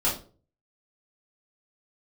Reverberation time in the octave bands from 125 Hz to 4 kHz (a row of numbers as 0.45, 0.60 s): 0.65, 0.45, 0.45, 0.35, 0.30, 0.30 s